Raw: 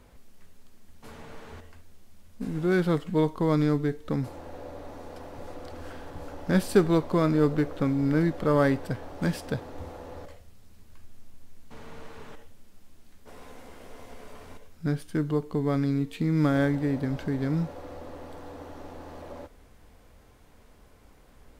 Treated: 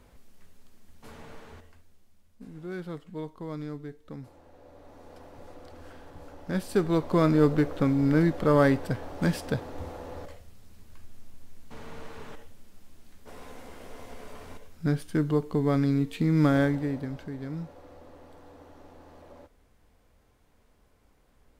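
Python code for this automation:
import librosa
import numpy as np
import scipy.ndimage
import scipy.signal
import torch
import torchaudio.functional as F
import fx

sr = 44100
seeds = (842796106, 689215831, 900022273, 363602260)

y = fx.gain(x, sr, db=fx.line((1.29, -1.5), (2.49, -13.0), (4.55, -13.0), (5.14, -6.5), (6.64, -6.5), (7.21, 1.5), (16.54, 1.5), (17.29, -8.5)))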